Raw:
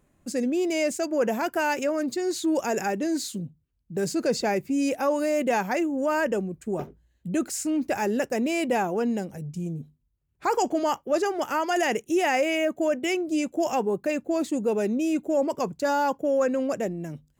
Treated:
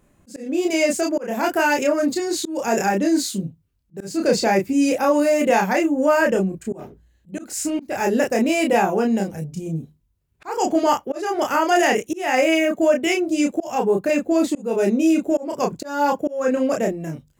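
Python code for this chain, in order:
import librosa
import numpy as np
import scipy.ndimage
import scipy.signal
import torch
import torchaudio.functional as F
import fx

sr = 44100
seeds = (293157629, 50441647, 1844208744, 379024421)

y = fx.room_early_taps(x, sr, ms=(21, 31), db=(-11.5, -3.0))
y = fx.auto_swell(y, sr, attack_ms=275.0)
y = F.gain(torch.from_numpy(y), 5.0).numpy()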